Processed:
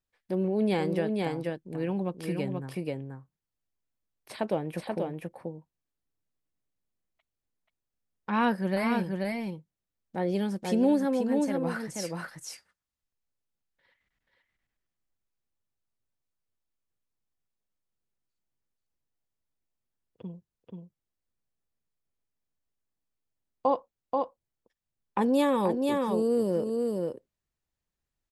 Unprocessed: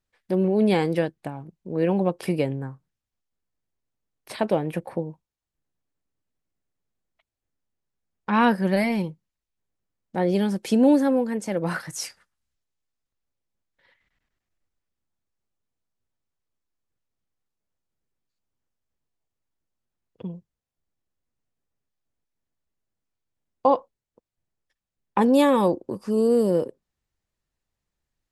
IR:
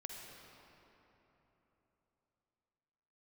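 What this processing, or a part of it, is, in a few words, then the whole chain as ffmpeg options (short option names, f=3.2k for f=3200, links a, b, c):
ducked delay: -filter_complex "[0:a]asplit=3[a][b][c];[b]adelay=483,volume=-3dB[d];[c]apad=whole_len=1269948[e];[d][e]sidechaincompress=threshold=-21dB:ratio=8:attack=36:release=363[f];[a][f]amix=inputs=2:normalize=0,asettb=1/sr,asplit=3[g][h][i];[g]atrim=end=1.584[j];[h]atrim=start=1.58:end=2.64,asetpts=PTS-STARTPTS,afade=t=in:d=0.004:c=qsin,afade=t=out:st=1.056:d=0.004:c=qsin,equalizer=f=610:t=o:w=1.3:g=-5.5[k];[i]atrim=start=2.636[l];[j][k]acrossfade=d=0.004:c1=hsin:c2=qsin[m];[m][l]acrossfade=d=0.004:c1=qsin:c2=hsin,volume=-6.5dB"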